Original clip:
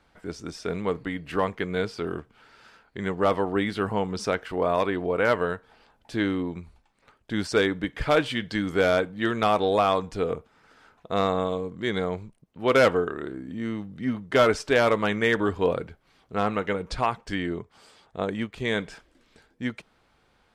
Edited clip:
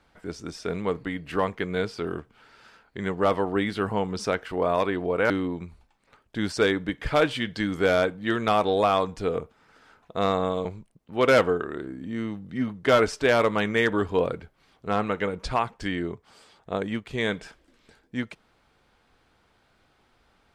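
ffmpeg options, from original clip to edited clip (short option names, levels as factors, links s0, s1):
-filter_complex "[0:a]asplit=3[s0][s1][s2];[s0]atrim=end=5.302[s3];[s1]atrim=start=6.248:end=11.602[s4];[s2]atrim=start=12.118[s5];[s3][s4]acrossfade=d=0.004:c1=hsin:c2=hsin[s6];[s6][s5]acrossfade=d=0.004:c1=hsin:c2=hsin"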